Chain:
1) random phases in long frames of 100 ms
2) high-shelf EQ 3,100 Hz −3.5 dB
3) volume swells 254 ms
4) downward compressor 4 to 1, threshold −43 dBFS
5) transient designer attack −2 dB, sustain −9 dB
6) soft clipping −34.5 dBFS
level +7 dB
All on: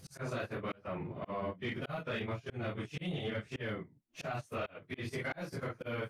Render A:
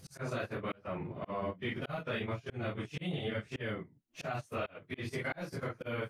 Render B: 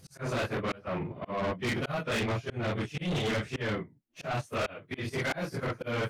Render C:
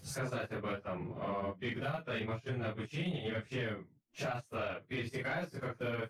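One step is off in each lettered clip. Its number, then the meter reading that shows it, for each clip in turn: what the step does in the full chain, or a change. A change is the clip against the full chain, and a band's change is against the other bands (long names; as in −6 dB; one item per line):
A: 6, distortion level −22 dB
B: 4, average gain reduction 10.0 dB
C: 3, 8 kHz band +4.0 dB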